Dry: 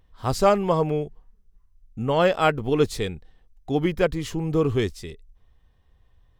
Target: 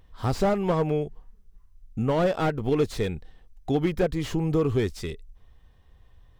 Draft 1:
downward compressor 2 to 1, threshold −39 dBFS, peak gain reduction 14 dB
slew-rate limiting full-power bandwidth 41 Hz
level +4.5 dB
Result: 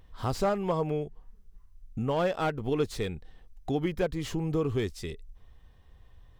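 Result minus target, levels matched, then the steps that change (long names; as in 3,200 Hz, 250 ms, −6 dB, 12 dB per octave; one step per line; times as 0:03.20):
downward compressor: peak gain reduction +5 dB
change: downward compressor 2 to 1, threshold −29 dBFS, peak gain reduction 9 dB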